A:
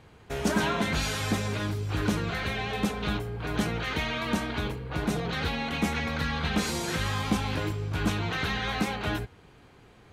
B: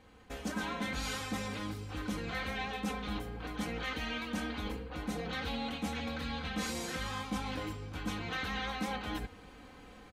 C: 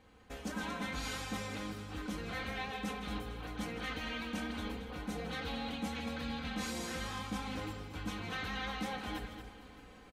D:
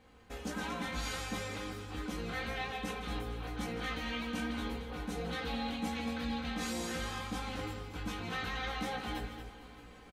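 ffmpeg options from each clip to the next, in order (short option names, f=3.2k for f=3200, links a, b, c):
-af "areverse,acompressor=threshold=-37dB:ratio=6,areverse,aecho=1:1:3.9:0.74,dynaudnorm=f=140:g=3:m=7.5dB,volume=-7dB"
-af "aecho=1:1:159|228|451|619:0.211|0.335|0.119|0.106,volume=-3dB"
-filter_complex "[0:a]asplit=2[a][b];[b]adelay=17,volume=-4dB[c];[a][c]amix=inputs=2:normalize=0"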